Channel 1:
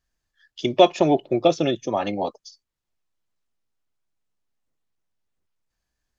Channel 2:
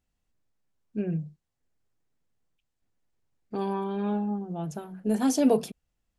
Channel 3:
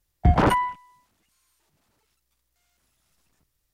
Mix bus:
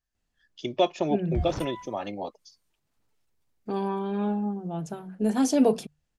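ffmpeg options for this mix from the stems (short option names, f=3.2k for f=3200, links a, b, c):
-filter_complex "[0:a]volume=-8.5dB,asplit=2[a][b];[1:a]lowpass=10k,bandreject=f=50:t=h:w=6,bandreject=f=100:t=h:w=6,bandreject=f=150:t=h:w=6,adelay=150,volume=1dB[c];[2:a]acrossover=split=160|3000[d][e][f];[e]acompressor=threshold=-33dB:ratio=2[g];[d][g][f]amix=inputs=3:normalize=0,adelay=1100,volume=-1.5dB,afade=t=out:st=1.86:d=0.31:silence=0.298538[h];[b]apad=whole_len=213381[i];[h][i]sidechaincompress=threshold=-36dB:ratio=8:attack=42:release=231[j];[a][c][j]amix=inputs=3:normalize=0"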